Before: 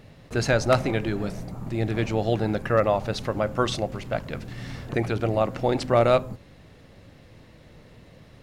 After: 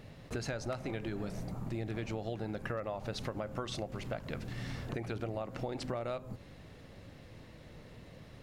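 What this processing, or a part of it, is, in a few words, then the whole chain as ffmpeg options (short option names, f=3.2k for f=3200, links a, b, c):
serial compression, peaks first: -af "acompressor=threshold=-27dB:ratio=6,acompressor=threshold=-35dB:ratio=2,volume=-2.5dB"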